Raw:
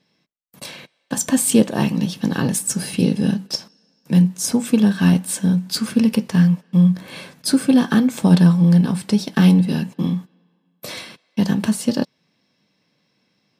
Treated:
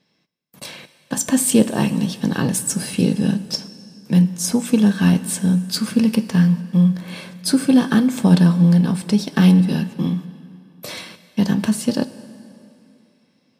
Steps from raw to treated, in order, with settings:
dense smooth reverb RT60 2.8 s, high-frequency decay 0.85×, DRR 14.5 dB

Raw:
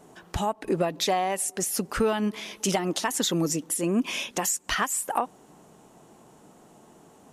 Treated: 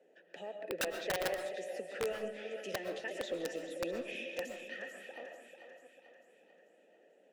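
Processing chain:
delay that plays each chunk backwards 326 ms, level −9 dB
Chebyshev high-pass filter 170 Hz, order 5
gain on a spectral selection 0:04.49–0:06.27, 360–10,000 Hz −7 dB
formant filter e
echo with a time of its own for lows and highs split 400 Hz, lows 242 ms, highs 442 ms, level −9 dB
wrap-around overflow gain 27 dB
on a send at −5.5 dB: high-shelf EQ 4,500 Hz −9.5 dB + convolution reverb RT60 0.40 s, pre-delay 85 ms
on the sum: level −1 dB

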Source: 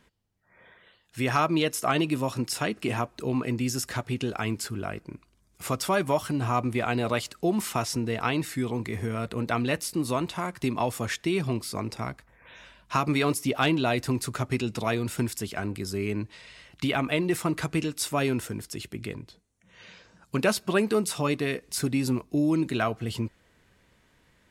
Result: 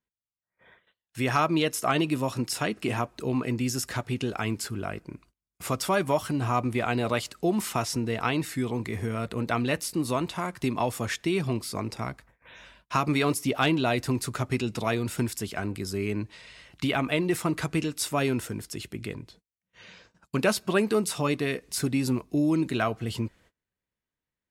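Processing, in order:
noise gate −55 dBFS, range −28 dB

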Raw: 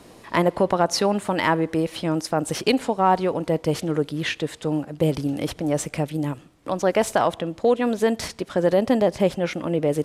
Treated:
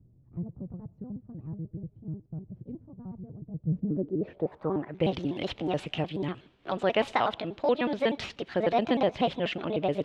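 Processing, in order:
pitch shifter gated in a rhythm +4 semitones, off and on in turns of 61 ms
low-pass filter sweep 120 Hz → 3,200 Hz, 0:03.59–0:05.12
level −6 dB

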